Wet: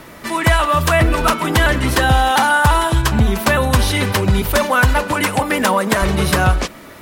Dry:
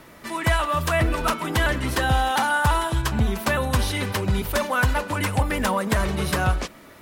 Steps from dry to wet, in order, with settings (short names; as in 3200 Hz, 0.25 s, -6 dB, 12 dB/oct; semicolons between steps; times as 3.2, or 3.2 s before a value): 5.12–6.02 HPF 190 Hz 12 dB/oct; in parallel at -1.5 dB: compressor, threshold -20 dBFS, peak gain reduction 5.5 dB; on the sum: gain +3.5 dB